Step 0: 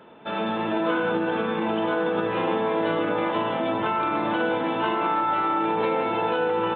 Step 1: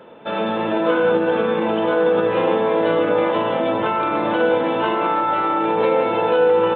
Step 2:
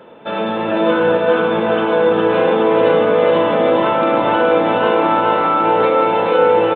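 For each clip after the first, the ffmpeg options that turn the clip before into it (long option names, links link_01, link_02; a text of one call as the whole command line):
ffmpeg -i in.wav -af "equalizer=frequency=520:width=3.9:gain=8,volume=3.5dB" out.wav
ffmpeg -i in.wav -af "aecho=1:1:420|840|1260|1680|2100|2520|2940:0.708|0.375|0.199|0.105|0.0559|0.0296|0.0157,volume=2dB" out.wav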